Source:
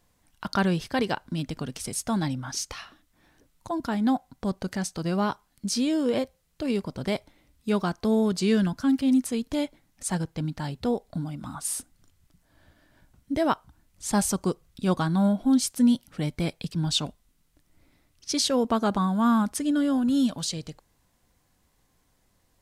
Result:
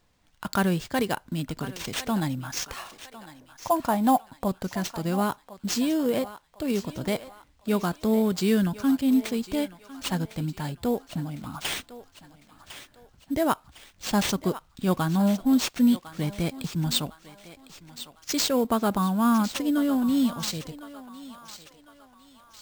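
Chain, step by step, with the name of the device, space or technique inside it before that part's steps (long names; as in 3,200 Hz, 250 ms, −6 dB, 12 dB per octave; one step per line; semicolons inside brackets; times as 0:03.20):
0:02.76–0:04.48: flat-topped bell 780 Hz +9 dB 1.3 octaves
feedback echo with a high-pass in the loop 1,054 ms, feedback 47%, high-pass 580 Hz, level −13 dB
early companding sampler (sample-rate reduction 12,000 Hz, jitter 0%; log-companded quantiser 8 bits)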